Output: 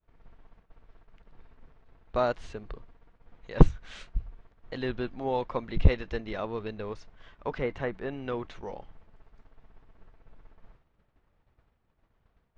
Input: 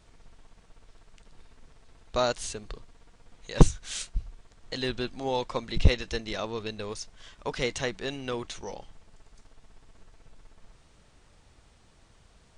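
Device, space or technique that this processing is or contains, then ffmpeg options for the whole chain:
hearing-loss simulation: -filter_complex "[0:a]lowpass=2000,agate=range=-33dB:threshold=-49dB:ratio=3:detection=peak,asettb=1/sr,asplit=3[link_01][link_02][link_03];[link_01]atrim=end=7.584[link_04];[link_02]atrim=start=7.58:end=8.26,asetpts=PTS-STARTPTS,afade=type=in:duration=0.004:curve=qsin,afade=type=out:start_time=0.676:duration=0.004:curve=qsin,acrossover=split=2500[link_05][link_06];[link_06]acompressor=threshold=-57dB:ratio=4:attack=1:release=60[link_07];[link_05][link_07]amix=inputs=2:normalize=0[link_08];[link_03]atrim=start=8.256[link_09];[link_04][link_08]acrossfade=duration=0.004:curve1=hsin:curve2=qsin[link_10];[link_10][link_09]acrossfade=duration=0.004:curve1=qsin:curve2=hsin"

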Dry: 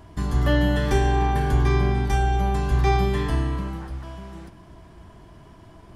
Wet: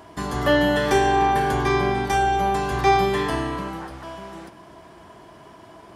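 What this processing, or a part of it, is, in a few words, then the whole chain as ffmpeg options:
filter by subtraction: -filter_complex "[0:a]asplit=2[link_01][link_02];[link_02]lowpass=590,volume=-1[link_03];[link_01][link_03]amix=inputs=2:normalize=0,volume=5dB"

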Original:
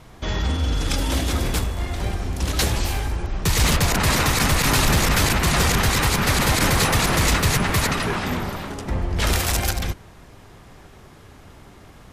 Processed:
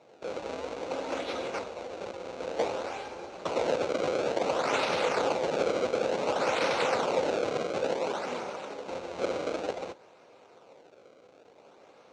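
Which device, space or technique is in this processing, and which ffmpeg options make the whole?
circuit-bent sampling toy: -af "acrusher=samples=28:mix=1:aa=0.000001:lfo=1:lforange=44.8:lforate=0.56,highpass=460,equalizer=frequency=510:width_type=q:width=4:gain=9,equalizer=frequency=1100:width_type=q:width=4:gain=-4,equalizer=frequency=1800:width_type=q:width=4:gain=-10,equalizer=frequency=3200:width_type=q:width=4:gain=-6,equalizer=frequency=5000:width_type=q:width=4:gain=-7,lowpass=frequency=5900:width=0.5412,lowpass=frequency=5900:width=1.3066,volume=-4.5dB"

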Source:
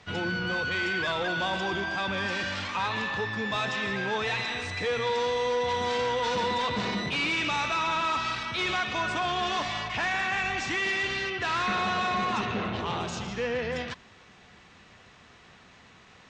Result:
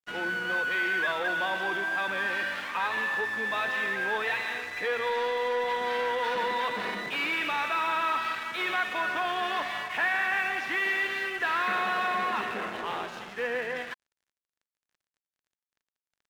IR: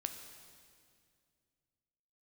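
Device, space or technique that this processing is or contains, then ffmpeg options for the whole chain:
pocket radio on a weak battery: -af "highpass=330,lowpass=3100,aeval=exprs='sgn(val(0))*max(abs(val(0))-0.00447,0)':channel_layout=same,equalizer=frequency=1700:width_type=o:width=0.46:gain=6"

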